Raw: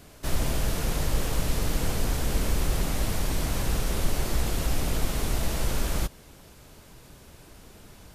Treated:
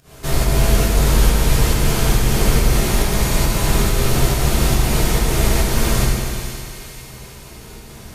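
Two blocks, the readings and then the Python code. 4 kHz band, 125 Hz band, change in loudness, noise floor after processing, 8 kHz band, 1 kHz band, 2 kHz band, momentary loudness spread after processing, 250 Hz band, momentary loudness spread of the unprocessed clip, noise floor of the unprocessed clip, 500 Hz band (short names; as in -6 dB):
+11.5 dB, +12.0 dB, +11.5 dB, -38 dBFS, +11.5 dB, +11.5 dB, +12.0 dB, 19 LU, +11.5 dB, 1 LU, -51 dBFS, +12.0 dB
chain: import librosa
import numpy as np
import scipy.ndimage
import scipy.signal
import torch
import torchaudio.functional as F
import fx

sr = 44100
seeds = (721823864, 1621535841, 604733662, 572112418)

y = fx.volume_shaper(x, sr, bpm=139, per_beat=1, depth_db=-22, release_ms=153.0, shape='fast start')
y = fx.echo_split(y, sr, split_hz=1900.0, low_ms=97, high_ms=484, feedback_pct=52, wet_db=-11.0)
y = fx.rev_fdn(y, sr, rt60_s=2.4, lf_ratio=0.95, hf_ratio=0.95, size_ms=44.0, drr_db=-5.5)
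y = y * 10.0 ** (5.5 / 20.0)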